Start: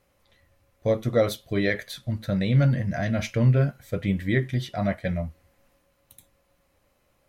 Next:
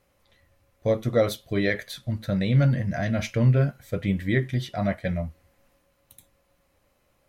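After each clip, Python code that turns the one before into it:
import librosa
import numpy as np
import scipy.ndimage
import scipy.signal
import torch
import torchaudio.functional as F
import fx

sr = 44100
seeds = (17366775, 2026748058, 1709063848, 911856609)

y = x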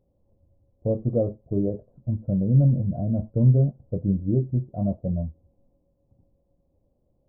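y = scipy.ndimage.gaussian_filter1d(x, 15.0, mode='constant')
y = y * 10.0 ** (2.5 / 20.0)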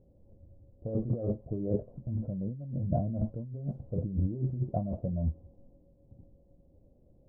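y = fx.env_lowpass(x, sr, base_hz=590.0, full_db=-16.5)
y = fx.over_compress(y, sr, threshold_db=-32.0, ratio=-1.0)
y = y * 10.0 ** (-1.0 / 20.0)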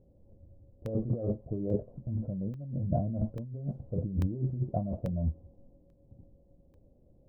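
y = fx.buffer_crackle(x, sr, first_s=0.86, period_s=0.84, block=64, kind='zero')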